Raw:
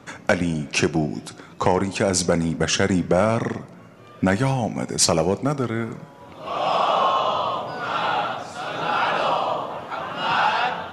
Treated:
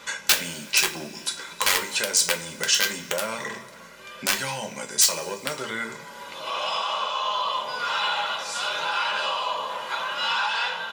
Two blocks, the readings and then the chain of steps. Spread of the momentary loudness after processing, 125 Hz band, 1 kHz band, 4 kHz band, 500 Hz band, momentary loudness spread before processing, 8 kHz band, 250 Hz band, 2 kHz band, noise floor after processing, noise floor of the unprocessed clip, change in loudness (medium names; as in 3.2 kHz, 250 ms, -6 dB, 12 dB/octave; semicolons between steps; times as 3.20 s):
11 LU, -19.5 dB, -5.5 dB, +4.0 dB, -10.5 dB, 11 LU, +3.5 dB, -17.0 dB, +1.0 dB, -44 dBFS, -45 dBFS, -2.0 dB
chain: bass shelf 190 Hz -7.5 dB; in parallel at -8.5 dB: saturation -17 dBFS, distortion -13 dB; on the sum: hum notches 60/120/180/240/300/360/420/480 Hz; gain riding within 4 dB 0.5 s; comb 2 ms, depth 53%; hum 50 Hz, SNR 31 dB; high-pass 88 Hz 12 dB/octave; small resonant body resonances 220/3900 Hz, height 10 dB, ringing for 75 ms; integer overflow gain 8 dB; two-slope reverb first 0.24 s, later 1.7 s, from -22 dB, DRR 2.5 dB; compression 1.5:1, threshold -35 dBFS, peak gain reduction 9 dB; tilt shelf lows -9.5 dB; trim -2.5 dB